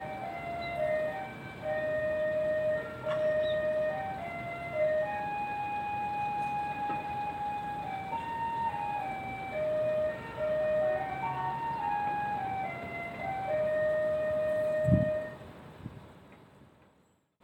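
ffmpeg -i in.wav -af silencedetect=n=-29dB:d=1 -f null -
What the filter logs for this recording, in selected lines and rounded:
silence_start: 15.86
silence_end: 17.43 | silence_duration: 1.57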